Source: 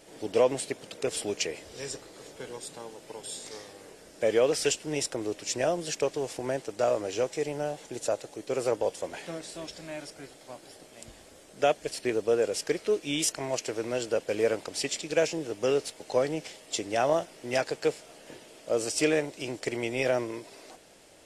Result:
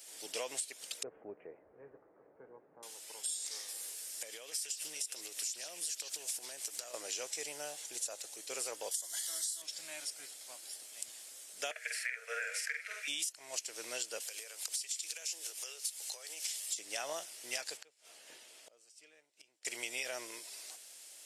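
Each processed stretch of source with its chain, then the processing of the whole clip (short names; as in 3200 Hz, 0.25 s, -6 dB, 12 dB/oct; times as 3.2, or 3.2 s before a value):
1.03–2.83 Gaussian blur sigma 7.3 samples + tilt -2 dB/oct
3.68–6.94 high shelf 6800 Hz +10.5 dB + compressor 12:1, threshold -35 dBFS + delay with a stepping band-pass 0.148 s, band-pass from 3500 Hz, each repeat -0.7 oct, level -4 dB
8.91–9.62 Butterworth band-stop 2500 Hz, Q 2.9 + tilt +4 dB/oct + comb 3 ms, depth 36%
11.71–13.08 rippled Chebyshev high-pass 450 Hz, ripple 9 dB + band shelf 1800 Hz +15.5 dB 1.1 oct + doubler 48 ms -2.5 dB
14.2–16.78 steep high-pass 330 Hz + compressor 8:1, threshold -38 dBFS + tilt +2.5 dB/oct
17.77–19.65 high shelf 4800 Hz -12 dB + flipped gate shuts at -32 dBFS, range -27 dB
whole clip: differentiator; compressor 16:1, threshold -42 dBFS; gain +7.5 dB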